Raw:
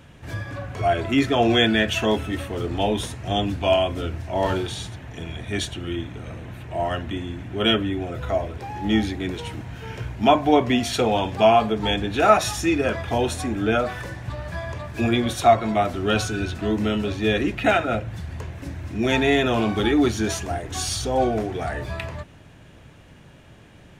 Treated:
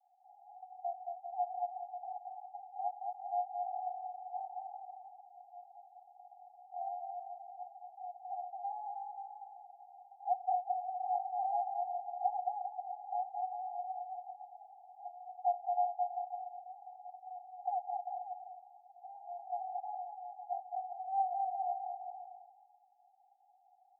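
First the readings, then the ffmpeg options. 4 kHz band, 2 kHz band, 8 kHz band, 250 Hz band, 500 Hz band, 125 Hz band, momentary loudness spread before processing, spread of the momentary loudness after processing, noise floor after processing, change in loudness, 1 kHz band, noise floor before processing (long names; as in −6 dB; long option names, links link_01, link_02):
below −40 dB, below −40 dB, below −40 dB, below −40 dB, −21.5 dB, below −40 dB, 15 LU, 20 LU, −67 dBFS, −17.0 dB, −10.0 dB, −48 dBFS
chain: -filter_complex "[0:a]acompressor=threshold=-20dB:ratio=6,asuperpass=centerf=770:order=12:qfactor=6.2,asplit=2[link_01][link_02];[link_02]aecho=0:1:220|396|536.8|649.4|739.6:0.631|0.398|0.251|0.158|0.1[link_03];[link_01][link_03]amix=inputs=2:normalize=0,volume=-3dB"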